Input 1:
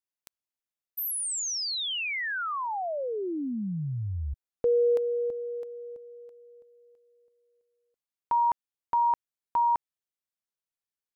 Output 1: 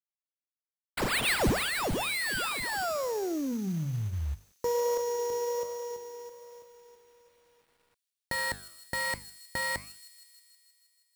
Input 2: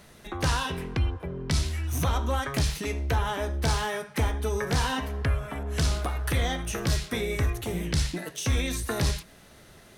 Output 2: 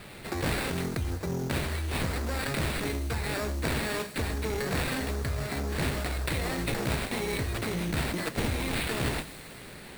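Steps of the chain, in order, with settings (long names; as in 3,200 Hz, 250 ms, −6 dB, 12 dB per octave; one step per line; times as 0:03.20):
lower of the sound and its delayed copy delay 0.47 ms
high-pass filter 82 Hz 12 dB per octave
high shelf with overshoot 5,000 Hz +7 dB, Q 3
mains-hum notches 50/100/150/200/250 Hz
in parallel at +1 dB: compressor whose output falls as the input rises −36 dBFS, ratio −1
on the sum: sample-rate reduction 6,200 Hz, jitter 0%
flanger 1.2 Hz, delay 6.3 ms, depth 7.8 ms, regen −89%
log-companded quantiser 6 bits
on a send: delay with a high-pass on its return 158 ms, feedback 71%, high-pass 5,300 Hz, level −10.5 dB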